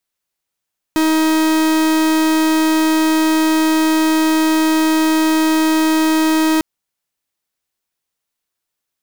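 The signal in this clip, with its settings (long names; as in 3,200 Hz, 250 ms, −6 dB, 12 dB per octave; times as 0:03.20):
pulse wave 316 Hz, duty 44% −14 dBFS 5.65 s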